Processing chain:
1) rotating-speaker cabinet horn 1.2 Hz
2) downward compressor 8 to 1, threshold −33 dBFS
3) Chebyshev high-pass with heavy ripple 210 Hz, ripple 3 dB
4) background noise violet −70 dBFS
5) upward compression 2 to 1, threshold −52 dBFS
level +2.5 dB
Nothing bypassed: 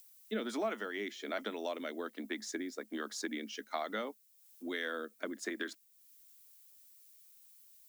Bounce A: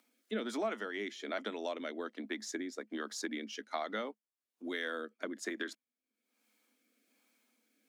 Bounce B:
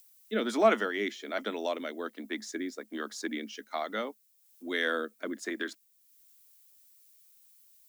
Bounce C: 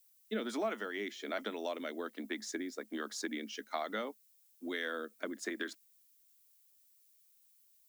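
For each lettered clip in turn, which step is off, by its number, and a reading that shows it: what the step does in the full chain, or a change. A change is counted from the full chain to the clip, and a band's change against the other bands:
4, change in momentary loudness spread −14 LU
2, average gain reduction 4.0 dB
5, change in momentary loudness spread −14 LU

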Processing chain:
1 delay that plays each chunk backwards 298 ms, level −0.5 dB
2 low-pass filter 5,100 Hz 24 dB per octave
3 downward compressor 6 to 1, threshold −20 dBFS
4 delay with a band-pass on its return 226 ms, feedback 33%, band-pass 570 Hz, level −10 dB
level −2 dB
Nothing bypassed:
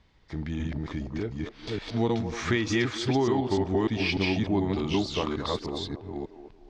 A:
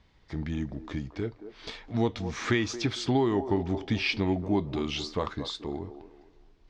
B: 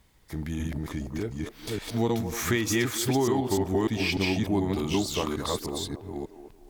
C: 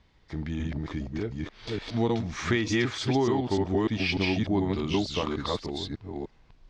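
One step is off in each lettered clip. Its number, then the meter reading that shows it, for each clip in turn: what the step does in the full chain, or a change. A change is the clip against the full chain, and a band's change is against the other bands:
1, change in momentary loudness spread +2 LU
2, 8 kHz band +10.0 dB
4, echo-to-direct ratio −14.0 dB to none audible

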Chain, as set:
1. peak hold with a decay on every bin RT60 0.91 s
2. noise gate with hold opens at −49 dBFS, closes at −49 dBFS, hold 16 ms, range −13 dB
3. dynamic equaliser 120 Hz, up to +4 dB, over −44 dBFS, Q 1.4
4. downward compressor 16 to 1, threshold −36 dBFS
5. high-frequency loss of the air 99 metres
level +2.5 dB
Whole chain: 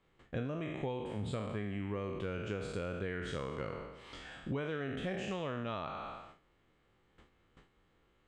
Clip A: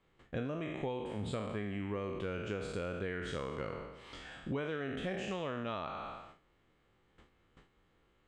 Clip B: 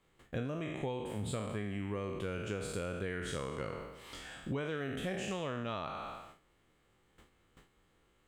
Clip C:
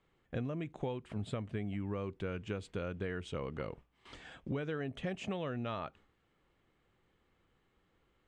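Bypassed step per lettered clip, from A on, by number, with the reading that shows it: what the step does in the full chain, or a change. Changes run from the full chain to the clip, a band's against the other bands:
3, 125 Hz band −2.5 dB
5, 8 kHz band +9.0 dB
1, 125 Hz band +2.5 dB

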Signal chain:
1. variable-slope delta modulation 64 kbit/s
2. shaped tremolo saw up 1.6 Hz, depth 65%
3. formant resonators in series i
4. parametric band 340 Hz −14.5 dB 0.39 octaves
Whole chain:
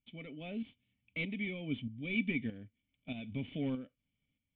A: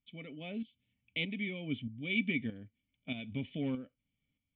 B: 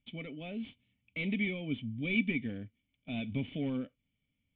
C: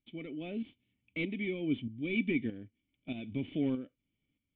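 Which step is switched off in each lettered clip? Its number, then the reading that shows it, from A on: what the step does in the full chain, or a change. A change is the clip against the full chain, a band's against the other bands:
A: 1, 4 kHz band +5.5 dB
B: 2, change in integrated loudness +3.0 LU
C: 4, 500 Hz band +5.5 dB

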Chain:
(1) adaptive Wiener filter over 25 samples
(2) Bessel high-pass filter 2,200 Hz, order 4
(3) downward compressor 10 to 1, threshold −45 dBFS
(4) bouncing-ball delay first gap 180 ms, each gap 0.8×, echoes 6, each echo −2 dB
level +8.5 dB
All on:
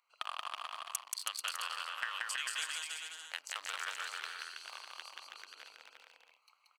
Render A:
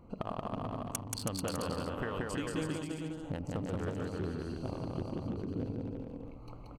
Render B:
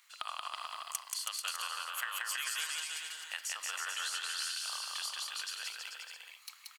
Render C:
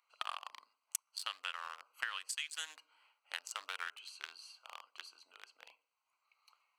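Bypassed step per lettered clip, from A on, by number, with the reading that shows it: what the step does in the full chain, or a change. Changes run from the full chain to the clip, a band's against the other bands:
2, 500 Hz band +26.5 dB
1, 8 kHz band +4.0 dB
4, change in momentary loudness spread +4 LU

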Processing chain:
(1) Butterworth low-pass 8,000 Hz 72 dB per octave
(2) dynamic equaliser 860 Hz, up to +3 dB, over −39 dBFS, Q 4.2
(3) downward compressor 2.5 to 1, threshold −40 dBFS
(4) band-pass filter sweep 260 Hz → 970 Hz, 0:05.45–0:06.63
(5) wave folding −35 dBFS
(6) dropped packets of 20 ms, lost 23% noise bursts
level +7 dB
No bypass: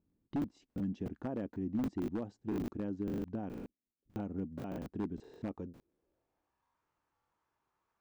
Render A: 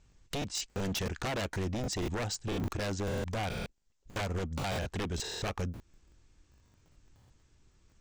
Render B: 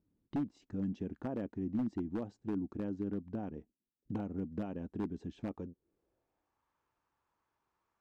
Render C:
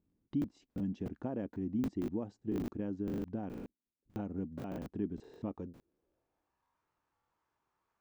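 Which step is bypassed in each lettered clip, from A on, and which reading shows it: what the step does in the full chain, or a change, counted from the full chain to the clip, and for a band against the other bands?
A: 4, 250 Hz band −11.0 dB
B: 6, change in crest factor −1.5 dB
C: 5, distortion level −17 dB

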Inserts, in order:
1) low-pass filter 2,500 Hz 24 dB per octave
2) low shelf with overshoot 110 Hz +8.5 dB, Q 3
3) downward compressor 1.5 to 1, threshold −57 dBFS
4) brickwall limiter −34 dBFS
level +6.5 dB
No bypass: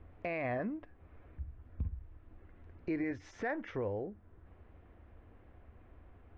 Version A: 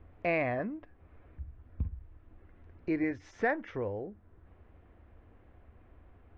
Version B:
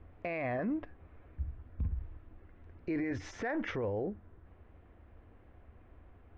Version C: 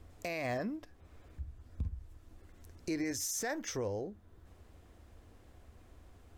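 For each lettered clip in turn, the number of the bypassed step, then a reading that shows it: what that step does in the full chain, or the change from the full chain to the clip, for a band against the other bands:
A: 4, change in crest factor +5.5 dB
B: 3, average gain reduction 8.5 dB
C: 1, 4 kHz band +15.5 dB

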